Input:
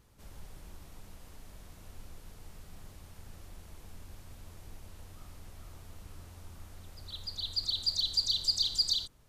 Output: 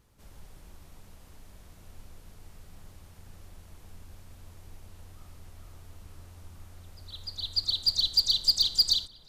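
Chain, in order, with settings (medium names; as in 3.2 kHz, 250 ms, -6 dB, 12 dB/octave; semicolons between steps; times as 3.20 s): hard clipper -21.5 dBFS, distortion -22 dB; on a send: feedback echo behind a low-pass 490 ms, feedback 67%, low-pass 2.4 kHz, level -13.5 dB; on the sum: upward expansion 1.5:1, over -41 dBFS; trim +7 dB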